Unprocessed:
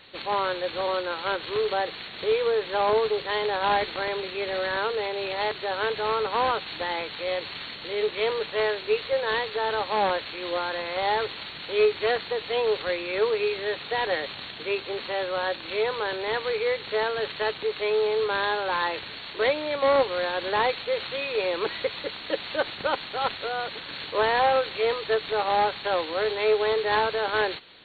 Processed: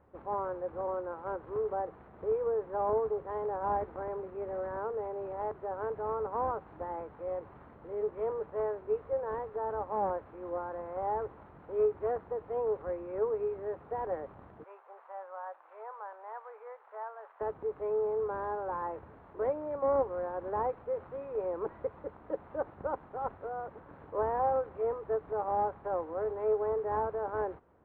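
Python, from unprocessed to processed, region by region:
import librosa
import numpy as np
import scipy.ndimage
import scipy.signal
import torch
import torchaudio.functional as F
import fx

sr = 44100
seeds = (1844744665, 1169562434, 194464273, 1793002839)

y = fx.chain(x, sr, fx.highpass(hz=740.0, slope=24),
    fx.high_shelf(hz=3100.0, db=-7.5), at=(14.64, 17.41))
y = scipy.signal.sosfilt(scipy.signal.butter(4, 1100.0, 'lowpass', fs=sr, output='sos'), y)
y = fx.peak_eq(y, sr, hz=70.0, db=11.0, octaves=0.83)
y = y * librosa.db_to_amplitude(-7.0)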